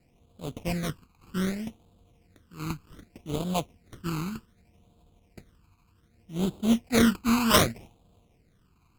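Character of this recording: aliases and images of a low sample rate 1700 Hz, jitter 20%; phasing stages 12, 0.65 Hz, lowest notch 580–1900 Hz; Opus

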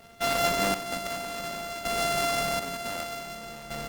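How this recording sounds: a buzz of ramps at a fixed pitch in blocks of 64 samples; chopped level 0.54 Hz, depth 65%, duty 40%; Opus

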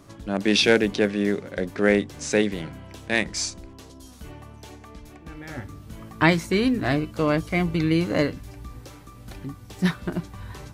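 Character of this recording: noise floor -46 dBFS; spectral tilt -5.0 dB/oct

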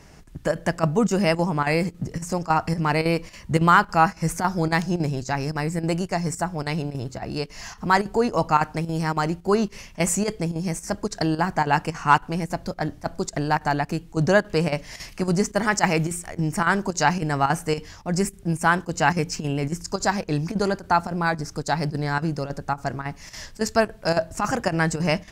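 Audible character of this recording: chopped level 3.6 Hz, depth 65%, duty 85%

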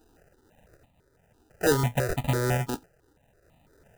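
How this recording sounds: aliases and images of a low sample rate 1100 Hz, jitter 0%; random-step tremolo 3.5 Hz; notches that jump at a steady rate 6 Hz 570–1500 Hz

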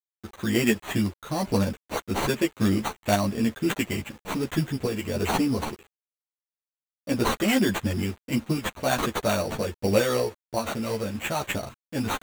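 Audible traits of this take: aliases and images of a low sample rate 5100 Hz, jitter 0%; random-step tremolo; a quantiser's noise floor 8-bit, dither none; a shimmering, thickened sound

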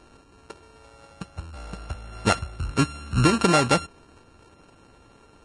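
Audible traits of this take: a buzz of ramps at a fixed pitch in blocks of 32 samples; Vorbis

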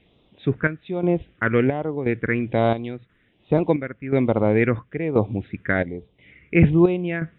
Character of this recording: phasing stages 4, 1.2 Hz, lowest notch 780–1700 Hz; chopped level 0.97 Hz, depth 65%, duty 65%; MP3

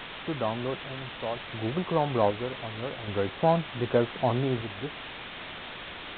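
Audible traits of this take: a buzz of ramps at a fixed pitch in blocks of 8 samples; random-step tremolo 1.3 Hz, depth 75%; a quantiser's noise floor 6-bit, dither triangular; µ-law

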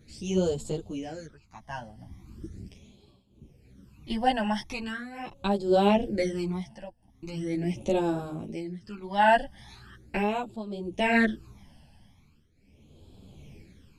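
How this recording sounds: phasing stages 12, 0.4 Hz, lowest notch 390–2000 Hz; tremolo triangle 0.54 Hz, depth 90%; a shimmering, thickened sound

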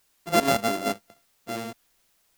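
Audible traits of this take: a buzz of ramps at a fixed pitch in blocks of 64 samples; random-step tremolo, depth 55%; a quantiser's noise floor 12-bit, dither triangular

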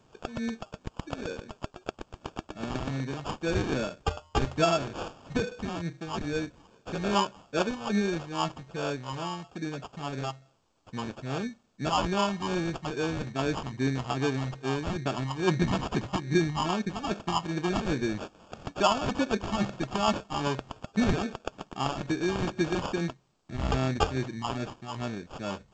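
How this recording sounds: phasing stages 2, 2.4 Hz, lowest notch 380–2800 Hz; aliases and images of a low sample rate 2000 Hz, jitter 0%; G.722

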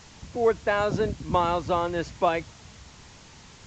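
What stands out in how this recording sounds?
a quantiser's noise floor 8-bit, dither triangular; A-law

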